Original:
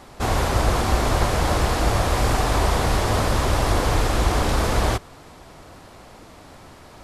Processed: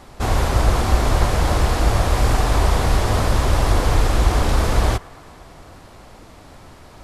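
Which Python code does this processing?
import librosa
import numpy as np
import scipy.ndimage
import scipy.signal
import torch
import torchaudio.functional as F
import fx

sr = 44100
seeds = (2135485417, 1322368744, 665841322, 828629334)

y = fx.low_shelf(x, sr, hz=84.0, db=7.0)
y = fx.echo_wet_bandpass(y, sr, ms=111, feedback_pct=77, hz=1100.0, wet_db=-21.5)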